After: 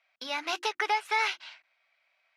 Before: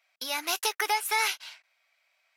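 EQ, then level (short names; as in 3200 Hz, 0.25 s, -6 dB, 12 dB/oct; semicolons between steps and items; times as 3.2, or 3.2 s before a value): LPF 3700 Hz 12 dB/oct; bell 230 Hz +2.5 dB 0.77 oct; notches 50/100/150/200/250/300/350 Hz; 0.0 dB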